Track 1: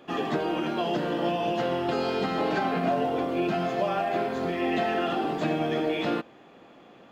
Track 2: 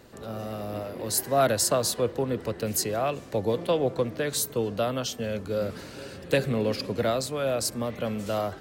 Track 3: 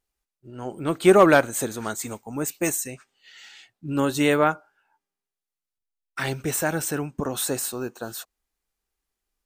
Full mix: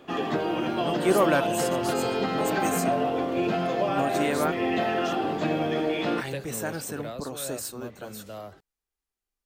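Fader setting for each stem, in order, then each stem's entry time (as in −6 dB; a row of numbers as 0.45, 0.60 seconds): +0.5, −11.5, −7.5 decibels; 0.00, 0.00, 0.00 seconds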